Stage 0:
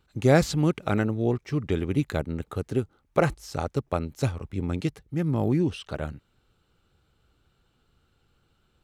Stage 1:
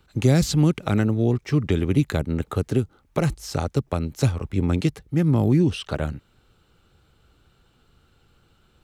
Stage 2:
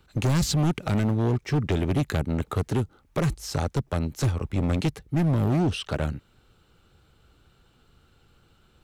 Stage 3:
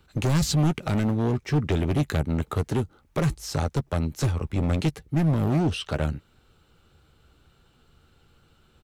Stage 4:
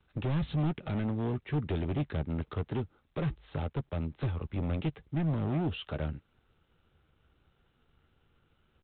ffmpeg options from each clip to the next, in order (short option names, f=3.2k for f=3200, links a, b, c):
-filter_complex "[0:a]asplit=2[a][b];[b]alimiter=limit=-16.5dB:level=0:latency=1:release=305,volume=-2.5dB[c];[a][c]amix=inputs=2:normalize=0,acrossover=split=280|3000[d][e][f];[e]acompressor=threshold=-27dB:ratio=6[g];[d][g][f]amix=inputs=3:normalize=0,volume=2.5dB"
-af "asoftclip=type=hard:threshold=-19dB"
-filter_complex "[0:a]asplit=2[a][b];[b]adelay=13,volume=-13dB[c];[a][c]amix=inputs=2:normalize=0"
-filter_complex "[0:a]acrossover=split=390|610|3100[a][b][c][d];[c]aeval=exprs='0.0335*(abs(mod(val(0)/0.0335+3,4)-2)-1)':c=same[e];[a][b][e][d]amix=inputs=4:normalize=0,volume=-8dB" -ar 8000 -c:a adpcm_g726 -b:a 32k